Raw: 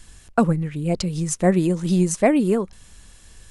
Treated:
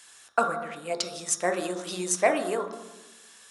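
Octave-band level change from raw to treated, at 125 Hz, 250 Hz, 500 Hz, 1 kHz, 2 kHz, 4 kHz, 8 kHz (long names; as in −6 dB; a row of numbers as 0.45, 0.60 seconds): −23.0, −16.0, −5.5, −1.0, +0.5, +1.0, 0.0 decibels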